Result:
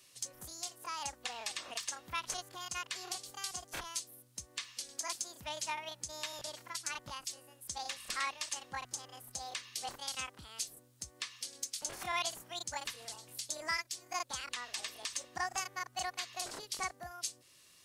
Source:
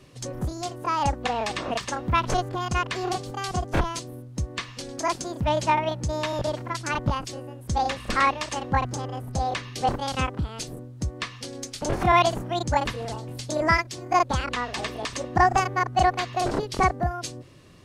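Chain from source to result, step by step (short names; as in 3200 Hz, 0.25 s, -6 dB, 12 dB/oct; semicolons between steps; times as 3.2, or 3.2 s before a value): pre-emphasis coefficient 0.97; in parallel at -2 dB: compressor, threshold -48 dBFS, peak gain reduction 18 dB; on the sum: hard clip -21.5 dBFS, distortion -39 dB; gain -2.5 dB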